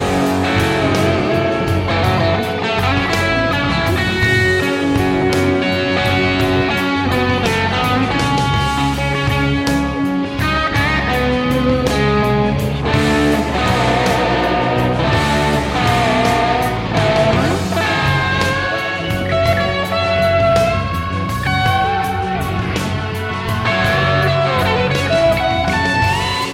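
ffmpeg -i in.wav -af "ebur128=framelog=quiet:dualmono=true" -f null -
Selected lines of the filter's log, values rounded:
Integrated loudness:
  I:         -12.4 LUFS
  Threshold: -22.4 LUFS
Loudness range:
  LRA:         1.4 LU
  Threshold: -32.4 LUFS
  LRA low:   -13.2 LUFS
  LRA high:  -11.8 LUFS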